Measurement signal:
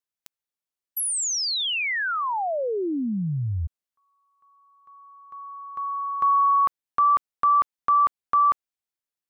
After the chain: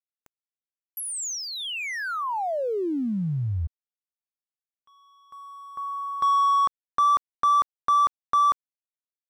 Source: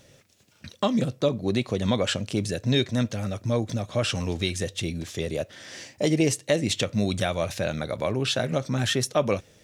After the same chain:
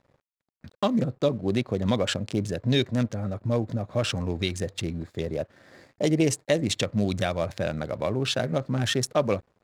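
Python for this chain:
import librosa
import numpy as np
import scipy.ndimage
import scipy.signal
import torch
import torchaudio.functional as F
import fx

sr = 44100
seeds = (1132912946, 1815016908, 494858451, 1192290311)

y = fx.wiener(x, sr, points=15)
y = np.sign(y) * np.maximum(np.abs(y) - 10.0 ** (-56.0 / 20.0), 0.0)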